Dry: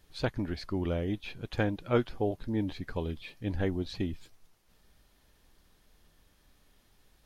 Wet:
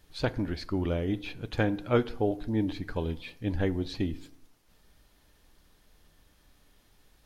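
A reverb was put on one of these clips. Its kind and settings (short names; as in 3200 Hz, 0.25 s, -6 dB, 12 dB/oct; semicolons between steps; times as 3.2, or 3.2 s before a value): FDN reverb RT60 0.76 s, low-frequency decay 1×, high-frequency decay 0.6×, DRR 14.5 dB; gain +2 dB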